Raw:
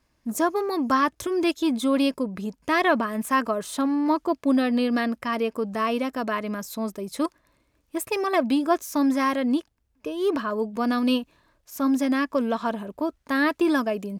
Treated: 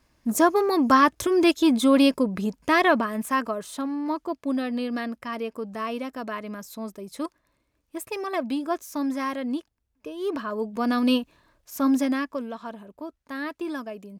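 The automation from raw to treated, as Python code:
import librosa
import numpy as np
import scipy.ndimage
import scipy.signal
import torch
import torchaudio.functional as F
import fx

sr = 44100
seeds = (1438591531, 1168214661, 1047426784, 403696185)

y = fx.gain(x, sr, db=fx.line((2.47, 4.0), (3.85, -5.5), (10.17, -5.5), (11.04, 1.0), (11.98, 1.0), (12.52, -10.0)))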